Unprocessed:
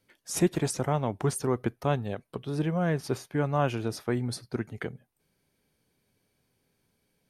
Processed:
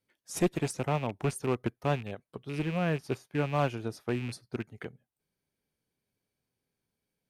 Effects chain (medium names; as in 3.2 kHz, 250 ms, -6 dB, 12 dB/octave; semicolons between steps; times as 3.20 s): rattle on loud lows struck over -33 dBFS, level -28 dBFS; one-sided clip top -23.5 dBFS; upward expansion 1.5:1, over -44 dBFS